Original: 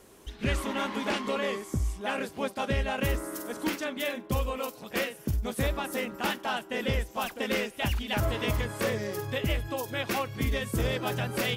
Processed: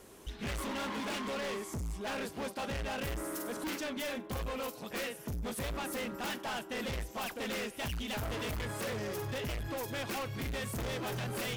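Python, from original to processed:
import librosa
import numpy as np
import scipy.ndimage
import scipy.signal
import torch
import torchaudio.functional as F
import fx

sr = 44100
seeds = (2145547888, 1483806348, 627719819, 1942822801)

y = np.clip(10.0 ** (35.0 / 20.0) * x, -1.0, 1.0) / 10.0 ** (35.0 / 20.0)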